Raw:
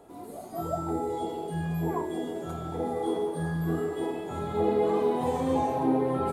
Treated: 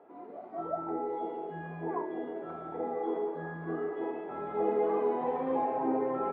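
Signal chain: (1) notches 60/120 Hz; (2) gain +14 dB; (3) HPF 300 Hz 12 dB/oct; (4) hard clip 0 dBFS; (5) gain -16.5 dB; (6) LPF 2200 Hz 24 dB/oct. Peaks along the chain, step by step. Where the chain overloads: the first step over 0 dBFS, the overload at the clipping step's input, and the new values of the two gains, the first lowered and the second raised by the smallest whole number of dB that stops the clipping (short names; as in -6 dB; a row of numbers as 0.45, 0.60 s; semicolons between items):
-14.5, -0.5, -2.0, -2.0, -18.5, -18.5 dBFS; no overload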